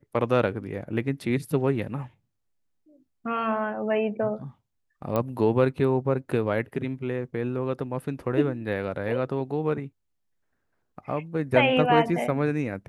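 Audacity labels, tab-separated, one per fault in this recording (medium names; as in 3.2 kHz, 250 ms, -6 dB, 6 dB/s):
5.160000	5.160000	pop -14 dBFS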